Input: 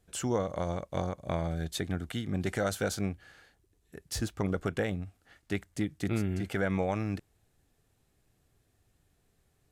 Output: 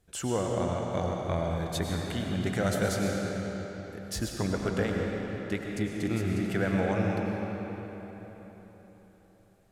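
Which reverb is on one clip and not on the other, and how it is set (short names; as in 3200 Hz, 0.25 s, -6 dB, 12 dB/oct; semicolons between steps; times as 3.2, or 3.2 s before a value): digital reverb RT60 4.2 s, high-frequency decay 0.75×, pre-delay 65 ms, DRR -0.5 dB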